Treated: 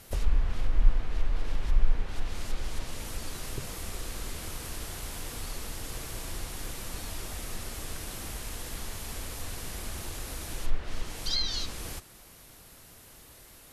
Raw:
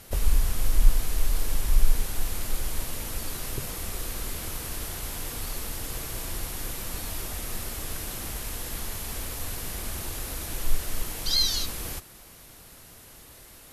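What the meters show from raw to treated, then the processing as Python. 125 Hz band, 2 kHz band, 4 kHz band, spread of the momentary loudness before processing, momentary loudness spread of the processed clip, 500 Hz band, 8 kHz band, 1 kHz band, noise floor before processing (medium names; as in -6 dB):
-3.0 dB, -3.0 dB, -5.0 dB, 18 LU, 18 LU, -3.0 dB, -6.5 dB, -3.0 dB, -49 dBFS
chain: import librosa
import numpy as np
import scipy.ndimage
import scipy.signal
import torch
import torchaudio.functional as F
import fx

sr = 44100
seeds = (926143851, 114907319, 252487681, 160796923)

y = fx.env_lowpass_down(x, sr, base_hz=2400.0, full_db=-16.0)
y = y * librosa.db_to_amplitude(-3.0)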